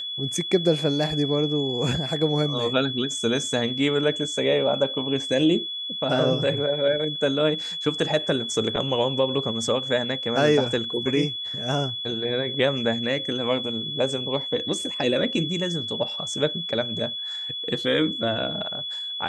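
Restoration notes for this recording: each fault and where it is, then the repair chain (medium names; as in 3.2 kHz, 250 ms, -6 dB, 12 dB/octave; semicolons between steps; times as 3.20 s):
whine 3.4 kHz -29 dBFS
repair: band-stop 3.4 kHz, Q 30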